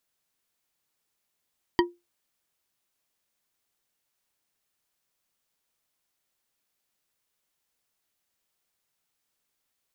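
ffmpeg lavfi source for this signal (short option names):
-f lavfi -i "aevalsrc='0.178*pow(10,-3*t/0.22)*sin(2*PI*349*t)+0.126*pow(10,-3*t/0.108)*sin(2*PI*962.2*t)+0.0891*pow(10,-3*t/0.068)*sin(2*PI*1886*t)+0.0631*pow(10,-3*t/0.048)*sin(2*PI*3117.6*t)+0.0447*pow(10,-3*t/0.036)*sin(2*PI*4655.7*t)':d=0.89:s=44100"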